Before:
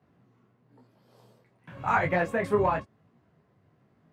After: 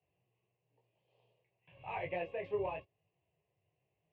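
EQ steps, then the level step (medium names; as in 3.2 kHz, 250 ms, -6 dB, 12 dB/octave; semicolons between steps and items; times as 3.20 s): dynamic bell 340 Hz, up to +6 dB, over -40 dBFS, Q 0.92; four-pole ladder low-pass 2.9 kHz, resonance 75%; static phaser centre 580 Hz, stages 4; -2.0 dB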